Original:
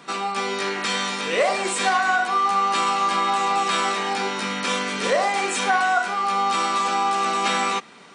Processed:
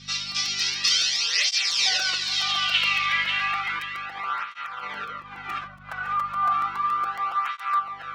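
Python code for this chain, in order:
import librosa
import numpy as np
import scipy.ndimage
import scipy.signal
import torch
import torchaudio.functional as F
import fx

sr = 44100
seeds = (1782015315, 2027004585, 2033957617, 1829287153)

y = fx.tracing_dist(x, sr, depth_ms=0.14)
y = fx.filter_sweep_lowpass(y, sr, from_hz=5300.0, to_hz=1200.0, start_s=2.02, end_s=3.83, q=4.8)
y = fx.over_compress(y, sr, threshold_db=-22.0, ratio=-0.5, at=(3.79, 5.89))
y = fx.weighting(y, sr, curve='D')
y = fx.dmg_buzz(y, sr, base_hz=50.0, harmonics=5, level_db=-31.0, tilt_db=-1, odd_only=False)
y = fx.tone_stack(y, sr, knobs='5-5-5')
y = y + 0.38 * np.pad(y, (int(6.6 * sr / 1000.0), 0))[:len(y)]
y = fx.echo_feedback(y, sr, ms=542, feedback_pct=28, wet_db=-6.5)
y = fx.buffer_crackle(y, sr, first_s=0.31, period_s=0.14, block=256, kind='repeat')
y = fx.flanger_cancel(y, sr, hz=0.33, depth_ms=3.0)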